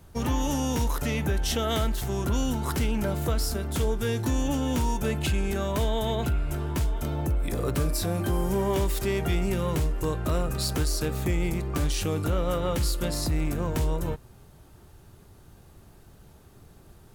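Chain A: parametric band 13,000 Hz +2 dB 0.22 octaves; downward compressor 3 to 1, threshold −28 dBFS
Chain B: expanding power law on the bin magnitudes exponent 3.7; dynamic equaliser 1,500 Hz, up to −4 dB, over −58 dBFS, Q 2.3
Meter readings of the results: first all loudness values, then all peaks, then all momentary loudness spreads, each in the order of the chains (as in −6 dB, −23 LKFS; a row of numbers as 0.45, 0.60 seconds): −31.5, −29.5 LKFS; −20.5, −18.0 dBFS; 2, 3 LU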